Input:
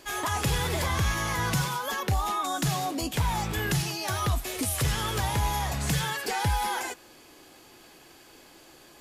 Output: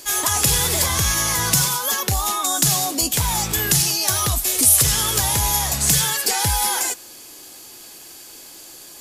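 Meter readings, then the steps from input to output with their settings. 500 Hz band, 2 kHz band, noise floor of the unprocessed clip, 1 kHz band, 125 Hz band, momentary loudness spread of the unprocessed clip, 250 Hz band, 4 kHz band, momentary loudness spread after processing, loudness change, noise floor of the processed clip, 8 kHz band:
+4.0 dB, +5.0 dB, -53 dBFS, +4.0 dB, +3.0 dB, 3 LU, +3.5 dB, +11.5 dB, 6 LU, +11.0 dB, -41 dBFS, +17.5 dB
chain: tone controls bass -1 dB, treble +15 dB; gain +4 dB

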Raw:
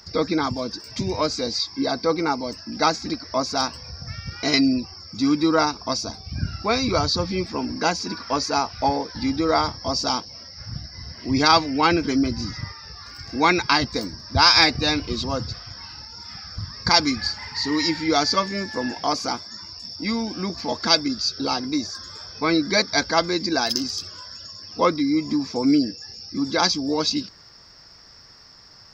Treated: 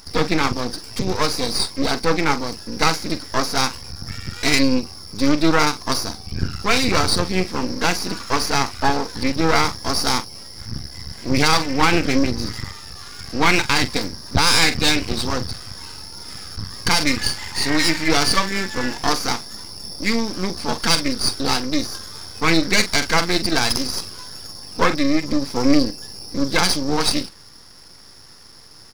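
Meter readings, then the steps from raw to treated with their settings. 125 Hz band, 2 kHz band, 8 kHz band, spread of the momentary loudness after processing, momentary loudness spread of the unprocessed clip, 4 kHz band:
+4.5 dB, +5.0 dB, n/a, 16 LU, 16 LU, +2.0 dB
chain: dynamic EQ 2300 Hz, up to +6 dB, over -38 dBFS, Q 1.5; doubler 43 ms -12.5 dB; half-wave rectifier; bell 630 Hz -6 dB 0.24 oct; maximiser +8 dB; gain -1 dB

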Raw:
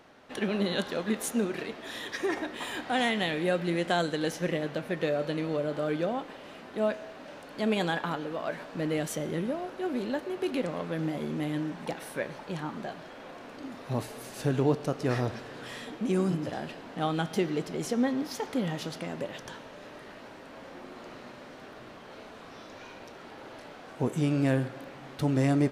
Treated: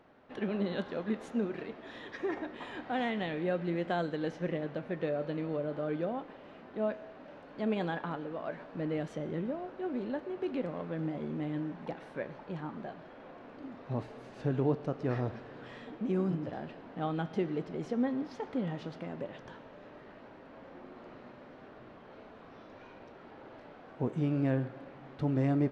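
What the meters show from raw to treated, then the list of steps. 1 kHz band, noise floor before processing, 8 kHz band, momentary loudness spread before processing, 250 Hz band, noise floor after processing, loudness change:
-5.5 dB, -47 dBFS, under -20 dB, 18 LU, -3.5 dB, -53 dBFS, -4.5 dB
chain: tape spacing loss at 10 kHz 28 dB; gain -3 dB

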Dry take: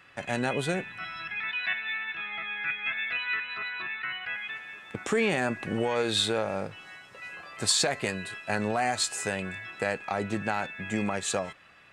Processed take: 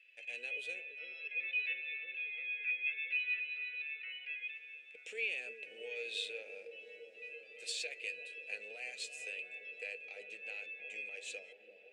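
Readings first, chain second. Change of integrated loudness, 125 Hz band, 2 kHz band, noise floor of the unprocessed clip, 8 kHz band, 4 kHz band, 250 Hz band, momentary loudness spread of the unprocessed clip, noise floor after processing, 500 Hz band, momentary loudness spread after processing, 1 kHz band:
-10.0 dB, under -40 dB, -7.5 dB, -53 dBFS, -18.5 dB, -13.0 dB, under -35 dB, 12 LU, -58 dBFS, -19.0 dB, 14 LU, under -30 dB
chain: double band-pass 1100 Hz, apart 2.4 oct; differentiator; dark delay 0.339 s, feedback 82%, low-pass 630 Hz, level -7.5 dB; gain +7.5 dB

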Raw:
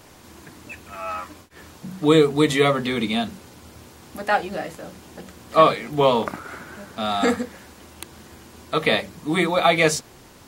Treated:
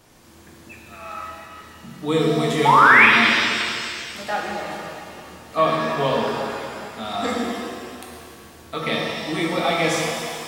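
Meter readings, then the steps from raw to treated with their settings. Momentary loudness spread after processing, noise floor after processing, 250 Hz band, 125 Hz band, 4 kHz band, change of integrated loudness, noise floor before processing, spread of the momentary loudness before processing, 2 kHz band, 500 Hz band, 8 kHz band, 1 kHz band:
23 LU, -46 dBFS, -2.0 dB, -0.5 dB, +2.5 dB, +2.0 dB, -48 dBFS, 23 LU, +8.5 dB, -3.0 dB, 0.0 dB, +3.5 dB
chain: painted sound rise, 2.65–3.06, 830–2600 Hz -8 dBFS; shimmer reverb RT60 2.3 s, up +7 st, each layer -8 dB, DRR -2.5 dB; gain -7 dB

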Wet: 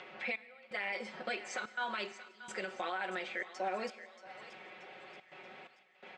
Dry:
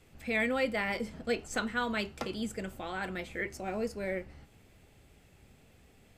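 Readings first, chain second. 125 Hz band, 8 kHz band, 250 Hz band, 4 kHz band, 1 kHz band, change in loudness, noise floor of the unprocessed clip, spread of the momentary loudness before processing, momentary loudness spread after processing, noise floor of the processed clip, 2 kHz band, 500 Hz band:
under -15 dB, -5.5 dB, -13.5 dB, -3.5 dB, -1.0 dB, -5.5 dB, -62 dBFS, 8 LU, 15 LU, -64 dBFS, -3.5 dB, -7.5 dB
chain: low-pass opened by the level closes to 2600 Hz, open at -29 dBFS; HPF 630 Hz 12 dB/oct; high shelf 12000 Hz -9 dB; comb 5.4 ms, depth 99%; compressor 2:1, threshold -51 dBFS, peak gain reduction 14.5 dB; limiter -39 dBFS, peak gain reduction 9 dB; upward compressor, threshold -58 dBFS; step gate "xxx...xxxxxxxx." 127 bpm -24 dB; air absorption 110 m; on a send: thinning echo 0.63 s, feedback 51%, high-pass 1000 Hz, level -12.5 dB; on the sum: plate-style reverb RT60 1.6 s, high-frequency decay 0.95×, DRR 16 dB; gain +12.5 dB

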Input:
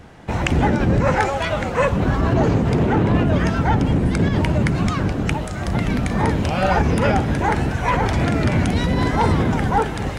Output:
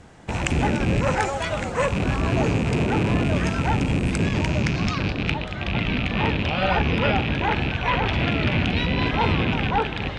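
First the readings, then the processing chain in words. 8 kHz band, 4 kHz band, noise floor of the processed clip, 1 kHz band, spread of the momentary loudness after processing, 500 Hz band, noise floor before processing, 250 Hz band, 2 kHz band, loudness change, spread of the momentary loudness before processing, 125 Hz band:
-2.0 dB, +3.0 dB, -31 dBFS, -4.0 dB, 4 LU, -4.5 dB, -27 dBFS, -4.5 dB, 0.0 dB, -3.5 dB, 4 LU, -4.5 dB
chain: rattling part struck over -22 dBFS, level -16 dBFS; low-pass sweep 8300 Hz -> 3400 Hz, 4.15–5.5; gain -4.5 dB

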